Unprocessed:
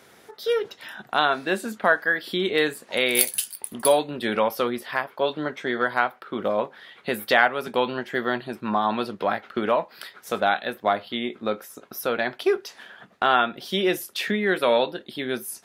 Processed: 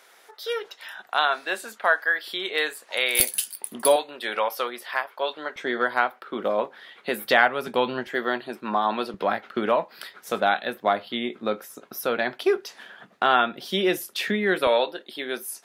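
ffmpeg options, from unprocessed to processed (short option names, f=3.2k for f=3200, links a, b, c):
-af "asetnsamples=n=441:p=0,asendcmd='3.2 highpass f 210;3.96 highpass f 600;5.56 highpass f 230;7.25 highpass f 95;8.07 highpass f 260;9.14 highpass f 130;14.67 highpass f 380',highpass=640"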